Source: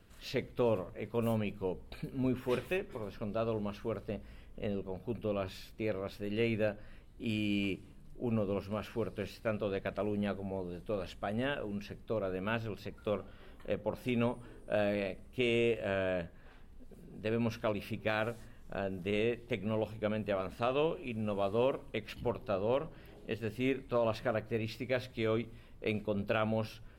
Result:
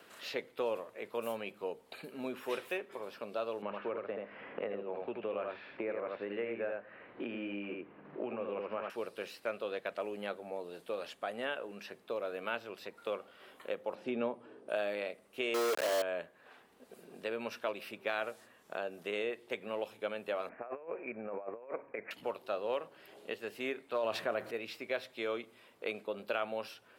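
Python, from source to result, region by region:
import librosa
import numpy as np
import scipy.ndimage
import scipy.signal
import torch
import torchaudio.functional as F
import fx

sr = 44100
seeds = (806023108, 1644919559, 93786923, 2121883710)

y = fx.chain(x, sr, fx.lowpass(hz=2100.0, slope=24),
    fx.echo_single(ms=79, db=-4.0),
    fx.band_squash(depth_pct=100), at=(3.62, 8.9))
y = fx.chain(y, sr, fx.bandpass_edges(low_hz=170.0, high_hz=7400.0),
    fx.tilt_eq(slope=-4.0), at=(13.95, 14.69))
y = fx.chain(y, sr, fx.brickwall_bandpass(low_hz=210.0, high_hz=1200.0),
    fx.quant_companded(bits=2), at=(15.54, 16.02))
y = fx.chain(y, sr, fx.cheby_ripple(hz=2400.0, ripple_db=3),
    fx.over_compress(threshold_db=-38.0, ratio=-0.5), at=(20.49, 22.11))
y = fx.chain(y, sr, fx.low_shelf(hz=210.0, db=7.0),
    fx.env_flatten(amount_pct=70), at=(24.03, 24.51))
y = scipy.signal.sosfilt(scipy.signal.butter(2, 470.0, 'highpass', fs=sr, output='sos'), y)
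y = fx.band_squash(y, sr, depth_pct=40)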